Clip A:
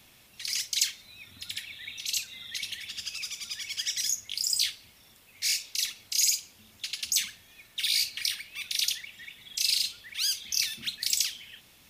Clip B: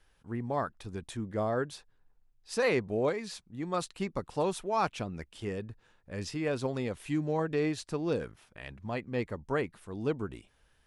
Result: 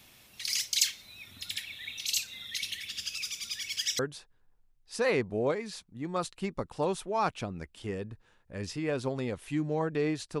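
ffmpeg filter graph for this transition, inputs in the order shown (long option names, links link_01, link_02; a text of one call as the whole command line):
ffmpeg -i cue0.wav -i cue1.wav -filter_complex "[0:a]asettb=1/sr,asplit=3[link_01][link_02][link_03];[link_01]atrim=end=2.474[link_04];[link_02]atrim=start=2.47:end=3.99,asetpts=PTS-STARTPTS,afade=type=in:duration=0.004:curve=qsin,afade=type=out:start_time=1.516:duration=0.004:curve=qsin,equalizer=frequency=810:width_type=o:width=0.65:gain=-7.5[link_05];[link_03]atrim=start=3.986[link_06];[link_04][link_05]acrossfade=duration=0.004:curve1=hsin:curve2=qsin[link_07];[link_07][link_06]acrossfade=duration=0.004:curve1=qsin:curve2=hsin,apad=whole_dur=10.4,atrim=end=10.4,atrim=end=3.992[link_08];[1:a]atrim=start=1.568:end=7.98[link_09];[link_08][link_09]acrossfade=duration=0.004:curve1=hsin:curve2=hsin" out.wav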